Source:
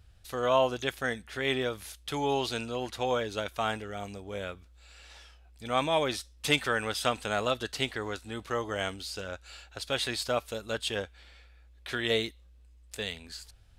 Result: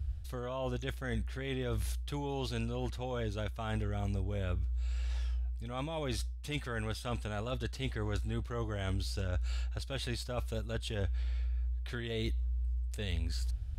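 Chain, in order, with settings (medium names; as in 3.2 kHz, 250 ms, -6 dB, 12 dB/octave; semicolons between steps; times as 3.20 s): peaking EQ 64 Hz +14.5 dB 1.3 oct; reverse; compression 6:1, threshold -38 dBFS, peak gain reduction 17.5 dB; reverse; bass shelf 270 Hz +10 dB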